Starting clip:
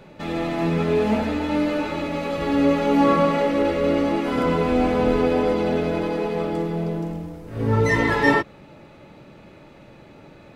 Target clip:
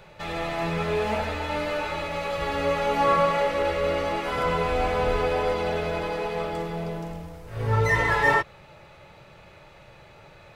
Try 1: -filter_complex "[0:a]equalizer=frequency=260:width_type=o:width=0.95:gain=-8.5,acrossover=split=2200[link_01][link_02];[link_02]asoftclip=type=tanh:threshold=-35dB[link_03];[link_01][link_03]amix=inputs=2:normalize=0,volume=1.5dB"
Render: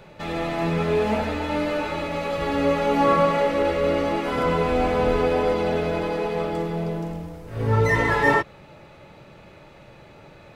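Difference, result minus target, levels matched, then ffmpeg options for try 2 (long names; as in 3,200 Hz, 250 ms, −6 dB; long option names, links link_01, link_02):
250 Hz band +5.5 dB
-filter_complex "[0:a]equalizer=frequency=260:width_type=o:width=0.95:gain=-20.5,acrossover=split=2200[link_01][link_02];[link_02]asoftclip=type=tanh:threshold=-35dB[link_03];[link_01][link_03]amix=inputs=2:normalize=0,volume=1.5dB"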